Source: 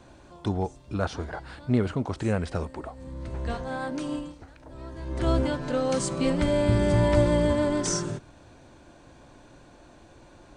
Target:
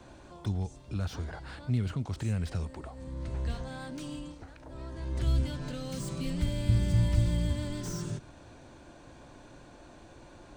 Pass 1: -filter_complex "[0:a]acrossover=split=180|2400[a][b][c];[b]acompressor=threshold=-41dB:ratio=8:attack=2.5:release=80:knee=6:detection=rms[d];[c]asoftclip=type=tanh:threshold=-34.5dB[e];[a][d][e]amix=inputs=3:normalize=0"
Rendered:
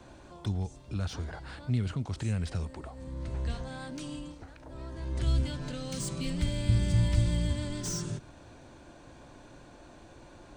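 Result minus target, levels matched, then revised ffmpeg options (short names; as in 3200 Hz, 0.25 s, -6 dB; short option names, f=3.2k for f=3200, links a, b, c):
soft clip: distortion -5 dB
-filter_complex "[0:a]acrossover=split=180|2400[a][b][c];[b]acompressor=threshold=-41dB:ratio=8:attack=2.5:release=80:knee=6:detection=rms[d];[c]asoftclip=type=tanh:threshold=-43.5dB[e];[a][d][e]amix=inputs=3:normalize=0"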